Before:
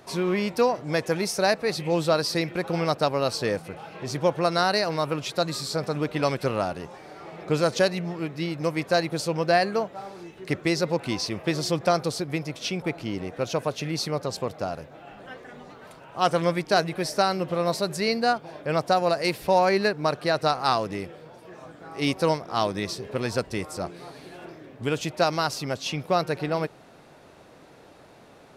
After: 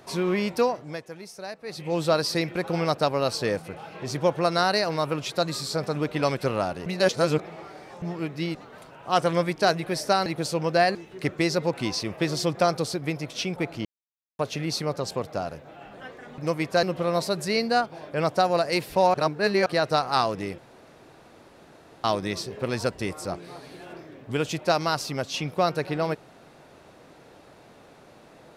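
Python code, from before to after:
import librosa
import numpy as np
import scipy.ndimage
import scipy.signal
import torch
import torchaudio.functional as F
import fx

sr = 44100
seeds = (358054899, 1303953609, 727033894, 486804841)

y = fx.edit(x, sr, fx.fade_down_up(start_s=0.56, length_s=1.53, db=-15.0, fade_s=0.48),
    fx.reverse_span(start_s=6.86, length_s=1.16),
    fx.swap(start_s=8.55, length_s=0.45, other_s=15.64, other_length_s=1.71),
    fx.cut(start_s=9.69, length_s=0.52),
    fx.silence(start_s=13.11, length_s=0.54),
    fx.reverse_span(start_s=19.66, length_s=0.52),
    fx.room_tone_fill(start_s=21.1, length_s=1.46), tone=tone)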